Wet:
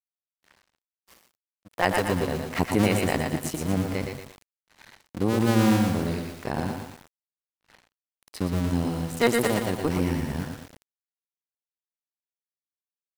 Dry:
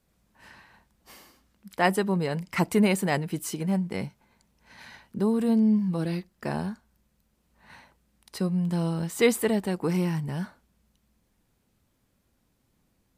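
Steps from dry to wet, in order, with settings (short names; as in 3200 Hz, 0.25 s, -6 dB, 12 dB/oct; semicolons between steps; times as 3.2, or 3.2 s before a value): cycle switcher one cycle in 2, muted; AGC gain up to 7.5 dB; on a send: echo 0.123 s -8.5 dB; on the sum: crossover distortion -44 dBFS; lo-fi delay 0.115 s, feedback 55%, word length 6-bit, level -5 dB; gain -4.5 dB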